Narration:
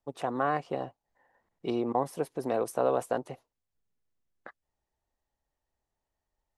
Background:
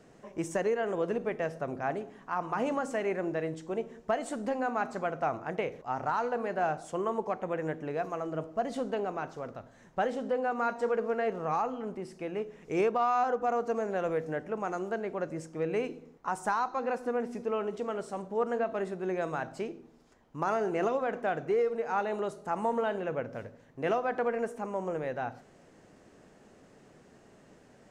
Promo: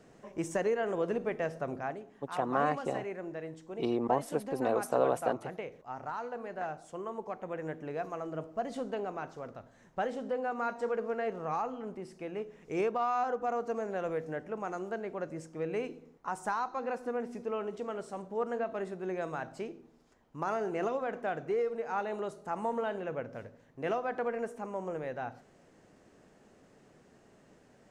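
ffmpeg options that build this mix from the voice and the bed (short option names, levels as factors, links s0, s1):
-filter_complex "[0:a]adelay=2150,volume=0.891[s0];[1:a]volume=1.5,afade=t=out:st=1.73:d=0.24:silence=0.446684,afade=t=in:st=7.1:d=0.83:silence=0.595662[s1];[s0][s1]amix=inputs=2:normalize=0"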